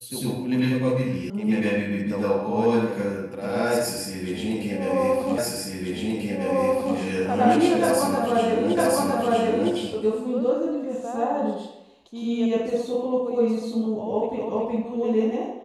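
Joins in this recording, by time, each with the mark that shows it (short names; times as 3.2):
1.3 sound cut off
5.38 repeat of the last 1.59 s
8.77 repeat of the last 0.96 s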